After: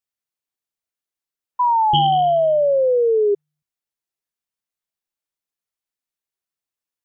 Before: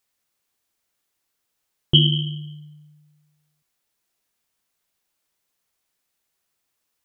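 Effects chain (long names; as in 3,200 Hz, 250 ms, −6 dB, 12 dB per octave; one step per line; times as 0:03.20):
sound drawn into the spectrogram fall, 0:01.59–0:03.35, 400–1,000 Hz −9 dBFS
noise reduction from a noise print of the clip's start 7 dB
level −7 dB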